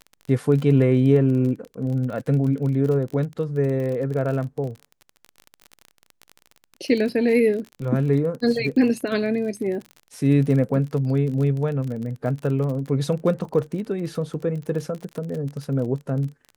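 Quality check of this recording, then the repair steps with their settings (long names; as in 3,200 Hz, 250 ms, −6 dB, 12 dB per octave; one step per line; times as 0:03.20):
surface crackle 31 per second −29 dBFS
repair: click removal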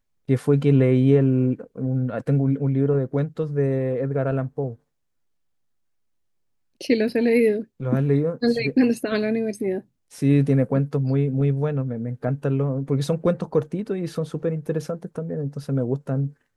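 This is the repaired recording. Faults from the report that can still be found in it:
none of them is left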